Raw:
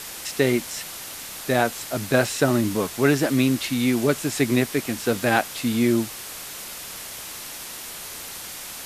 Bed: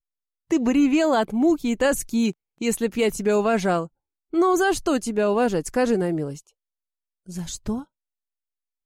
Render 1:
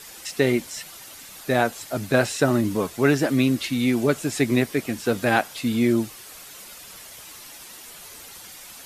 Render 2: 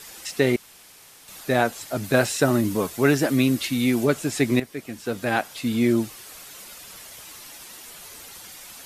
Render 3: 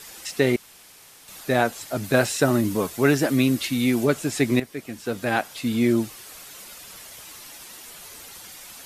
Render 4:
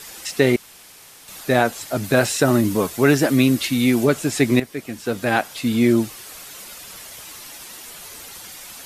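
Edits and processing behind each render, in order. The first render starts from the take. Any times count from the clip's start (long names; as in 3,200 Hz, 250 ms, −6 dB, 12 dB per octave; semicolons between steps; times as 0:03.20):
broadband denoise 9 dB, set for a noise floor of −37 dBFS
0:00.56–0:01.28: fill with room tone; 0:02.04–0:04.05: high-shelf EQ 8,700 Hz +6.5 dB; 0:04.60–0:05.87: fade in, from −12 dB
no processing that can be heard
level +4 dB; brickwall limiter −3 dBFS, peak gain reduction 2.5 dB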